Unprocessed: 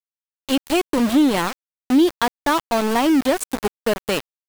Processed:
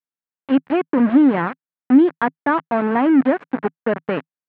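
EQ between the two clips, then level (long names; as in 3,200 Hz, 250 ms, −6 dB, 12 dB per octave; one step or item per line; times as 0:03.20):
loudspeaker in its box 140–2,100 Hz, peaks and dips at 160 Hz +7 dB, 260 Hz +5 dB, 1,600 Hz +3 dB
0.0 dB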